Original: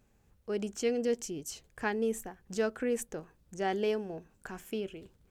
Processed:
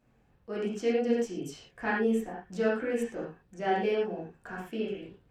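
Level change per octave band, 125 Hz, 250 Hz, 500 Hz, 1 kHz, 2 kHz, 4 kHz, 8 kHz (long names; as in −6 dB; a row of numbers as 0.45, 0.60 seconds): +3.0, +4.5, +3.0, +5.0, +4.5, 0.0, −8.0 decibels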